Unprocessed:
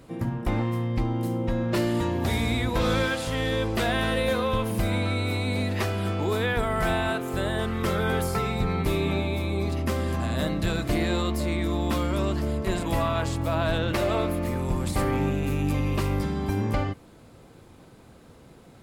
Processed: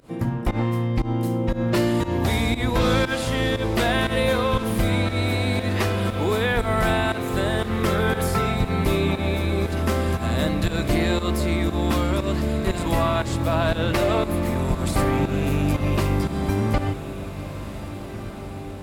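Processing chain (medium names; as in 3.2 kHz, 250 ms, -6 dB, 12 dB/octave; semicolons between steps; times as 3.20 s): volume shaper 118 bpm, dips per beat 1, -19 dB, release 117 ms; echo that smears into a reverb 1651 ms, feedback 55%, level -12 dB; trim +4 dB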